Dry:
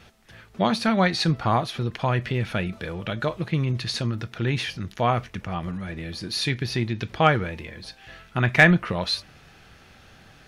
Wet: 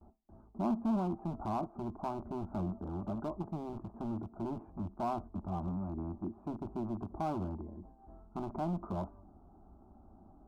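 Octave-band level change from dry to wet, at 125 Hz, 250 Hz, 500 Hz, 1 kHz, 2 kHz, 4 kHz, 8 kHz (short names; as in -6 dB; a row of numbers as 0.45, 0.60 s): -16.0 dB, -9.5 dB, -13.5 dB, -13.0 dB, -36.5 dB, under -30 dB, under -25 dB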